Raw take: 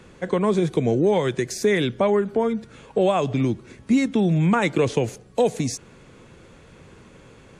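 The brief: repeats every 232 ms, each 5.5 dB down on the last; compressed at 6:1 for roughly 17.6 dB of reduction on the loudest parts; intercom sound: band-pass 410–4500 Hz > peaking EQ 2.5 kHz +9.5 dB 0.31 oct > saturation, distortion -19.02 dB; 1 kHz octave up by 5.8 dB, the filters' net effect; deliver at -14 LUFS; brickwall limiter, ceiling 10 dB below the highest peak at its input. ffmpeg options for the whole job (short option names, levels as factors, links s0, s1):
-af "equalizer=f=1000:t=o:g=7.5,acompressor=threshold=0.0224:ratio=6,alimiter=level_in=1.58:limit=0.0631:level=0:latency=1,volume=0.631,highpass=410,lowpass=4500,equalizer=f=2500:t=o:w=0.31:g=9.5,aecho=1:1:232|464|696|928|1160|1392|1624:0.531|0.281|0.149|0.079|0.0419|0.0222|0.0118,asoftclip=threshold=0.0266,volume=25.1"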